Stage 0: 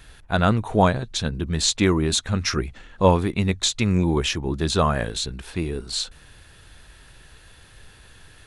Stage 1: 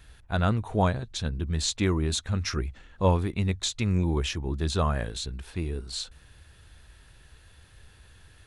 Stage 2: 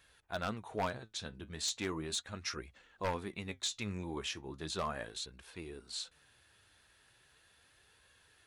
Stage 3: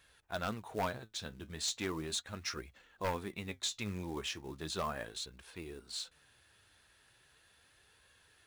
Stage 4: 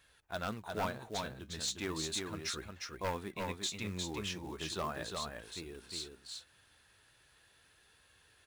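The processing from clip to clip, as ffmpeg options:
-af "equalizer=f=71:w=1.2:g=8,volume=-7.5dB"
-af "highpass=f=440:p=1,aeval=exprs='0.106*(abs(mod(val(0)/0.106+3,4)-2)-1)':c=same,flanger=delay=1.8:depth=8.2:regen=66:speed=0.37:shape=sinusoidal,volume=-2.5dB"
-af "acrusher=bits=5:mode=log:mix=0:aa=0.000001"
-af "aecho=1:1:356:0.631,volume=-1dB"

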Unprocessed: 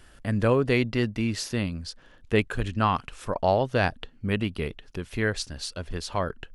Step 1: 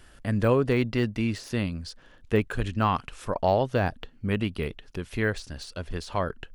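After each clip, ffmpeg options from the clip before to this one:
-af "deesser=0.9"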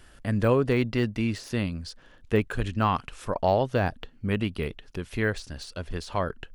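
-af anull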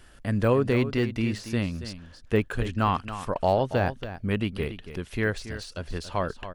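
-af "aecho=1:1:280:0.251"

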